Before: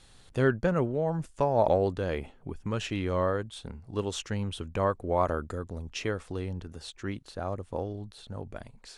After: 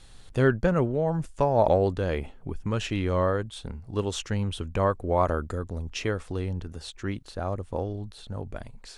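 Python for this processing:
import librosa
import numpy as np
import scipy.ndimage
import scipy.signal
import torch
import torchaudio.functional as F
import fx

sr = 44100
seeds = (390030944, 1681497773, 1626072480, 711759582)

y = fx.low_shelf(x, sr, hz=64.0, db=8.0)
y = y * librosa.db_to_amplitude(2.5)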